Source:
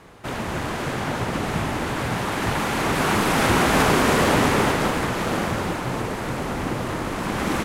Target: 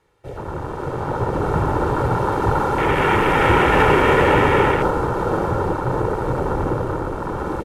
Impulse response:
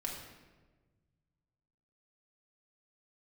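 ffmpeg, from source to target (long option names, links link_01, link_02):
-af "aecho=1:1:2.2:0.59,afwtdn=0.0708,dynaudnorm=framelen=370:gausssize=7:maxgain=11.5dB,volume=-1dB"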